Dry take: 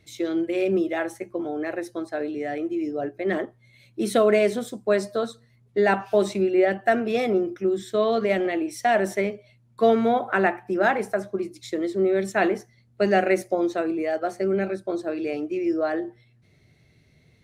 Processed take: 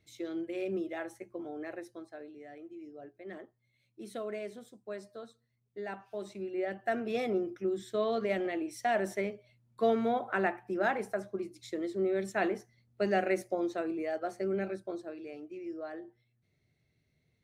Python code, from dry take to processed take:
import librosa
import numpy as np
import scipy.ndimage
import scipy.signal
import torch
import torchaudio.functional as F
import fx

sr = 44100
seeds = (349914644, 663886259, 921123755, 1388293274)

y = fx.gain(x, sr, db=fx.line((1.74, -12.0), (2.34, -20.0), (6.14, -20.0), (7.12, -9.0), (14.8, -9.0), (15.22, -16.5)))